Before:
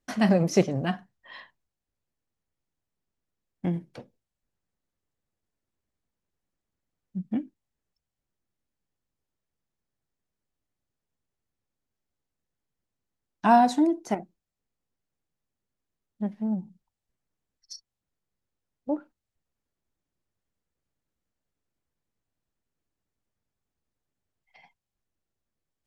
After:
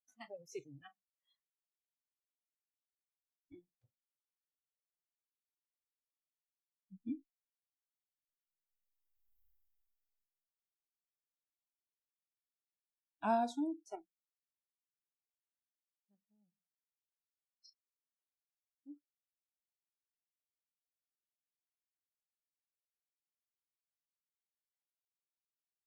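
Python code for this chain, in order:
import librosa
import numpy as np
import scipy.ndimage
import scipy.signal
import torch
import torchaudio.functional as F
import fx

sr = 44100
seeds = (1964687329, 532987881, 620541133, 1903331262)

y = fx.doppler_pass(x, sr, speed_mps=12, closest_m=1.7, pass_at_s=9.45)
y = fx.noise_reduce_blind(y, sr, reduce_db=30)
y = y * 10.0 ** (14.0 / 20.0)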